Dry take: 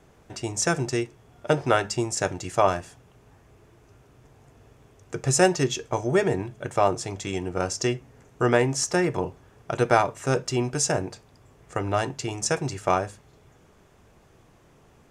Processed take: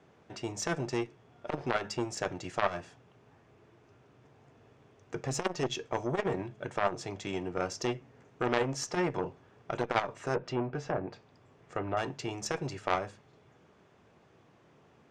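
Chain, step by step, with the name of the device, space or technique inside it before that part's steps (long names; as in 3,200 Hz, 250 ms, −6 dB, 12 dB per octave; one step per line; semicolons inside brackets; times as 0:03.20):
valve radio (band-pass filter 120–4,600 Hz; tube saturation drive 8 dB, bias 0.7; saturating transformer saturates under 1,700 Hz)
0:10.34–0:11.97: treble cut that deepens with the level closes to 1,600 Hz, closed at −29 dBFS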